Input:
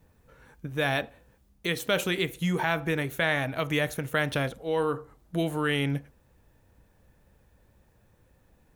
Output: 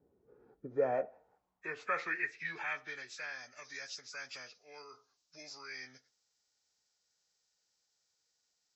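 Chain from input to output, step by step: nonlinear frequency compression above 1300 Hz 1.5:1; formant-preserving pitch shift -1.5 st; band-pass sweep 370 Hz -> 5100 Hz, 0.49–3.42; gain +1 dB

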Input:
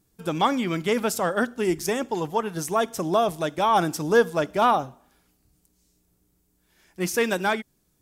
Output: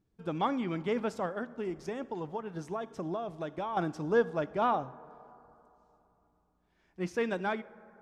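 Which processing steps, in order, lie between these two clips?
1.25–3.77 compressor, threshold -25 dBFS, peak gain reduction 9 dB; tape spacing loss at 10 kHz 23 dB; reverb RT60 3.2 s, pre-delay 13 ms, DRR 19 dB; gain -6.5 dB

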